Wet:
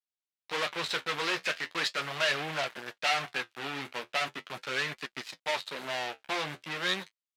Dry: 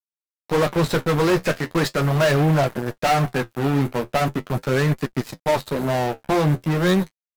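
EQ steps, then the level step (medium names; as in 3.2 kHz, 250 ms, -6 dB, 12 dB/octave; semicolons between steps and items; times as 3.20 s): band-pass filter 3.1 kHz, Q 1.1; 0.0 dB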